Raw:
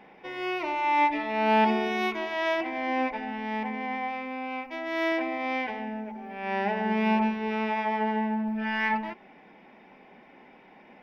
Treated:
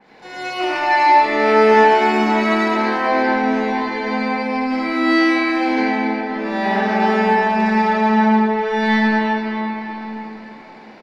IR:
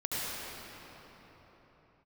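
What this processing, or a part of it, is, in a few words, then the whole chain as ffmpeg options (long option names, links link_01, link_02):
shimmer-style reverb: -filter_complex "[0:a]asettb=1/sr,asplit=3[link_01][link_02][link_03];[link_01]atrim=end=3.854[link_04];[link_02]atrim=start=3.85:end=5.31,asetpts=PTS-STARTPTS,afade=type=in:duration=0.004:curve=qsin,afade=type=out:start_time=1.456:duration=0.004:curve=qsin,asplit=2[link_05][link_06];[link_06]adelay=24,volume=-2dB[link_07];[link_05][link_07]amix=inputs=2:normalize=0,atrim=end_sample=64386[link_08];[link_03]atrim=start=5.306[link_09];[link_04][link_08]acrossfade=duration=0.004:curve1=hsin:curve2=qsin[link_10];[link_10][link_09]acrossfade=duration=0.004:curve1=qsin:curve2=hsin,asplit=2[link_11][link_12];[link_12]adelay=151.6,volume=-23dB,highshelf=frequency=4000:gain=-3.41[link_13];[link_11][link_13]amix=inputs=2:normalize=0,asplit=2[link_14][link_15];[link_15]asetrate=88200,aresample=44100,atempo=0.5,volume=-7dB[link_16];[link_14][link_16]amix=inputs=2:normalize=0[link_17];[1:a]atrim=start_sample=2205[link_18];[link_17][link_18]afir=irnorm=-1:irlink=0,adynamicequalizer=threshold=0.0158:dfrequency=2900:dqfactor=0.7:tfrequency=2900:tqfactor=0.7:attack=5:release=100:ratio=0.375:range=3:mode=cutabove:tftype=highshelf,volume=2.5dB"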